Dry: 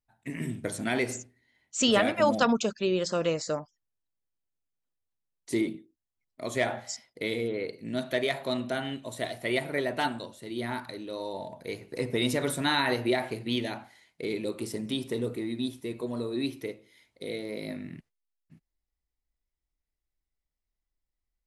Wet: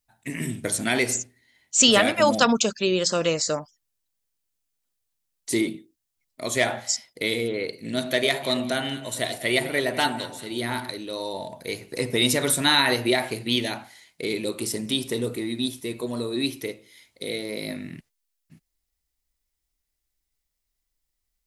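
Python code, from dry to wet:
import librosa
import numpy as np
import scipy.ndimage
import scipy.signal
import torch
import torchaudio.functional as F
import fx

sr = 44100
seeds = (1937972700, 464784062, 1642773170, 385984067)

y = fx.echo_alternate(x, sr, ms=100, hz=970.0, feedback_pct=53, wet_db=-9.0, at=(7.83, 10.9), fade=0.02)
y = fx.high_shelf(y, sr, hz=2900.0, db=10.5)
y = y * 10.0 ** (3.5 / 20.0)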